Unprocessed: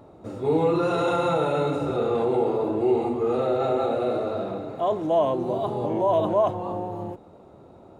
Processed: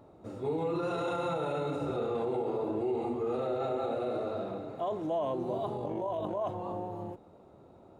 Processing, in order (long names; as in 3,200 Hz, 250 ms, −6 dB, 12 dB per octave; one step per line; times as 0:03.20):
brickwall limiter −17.5 dBFS, peak gain reduction 6 dB
0:05.77–0:06.42: amplitude modulation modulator 48 Hz, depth 30%
level −7 dB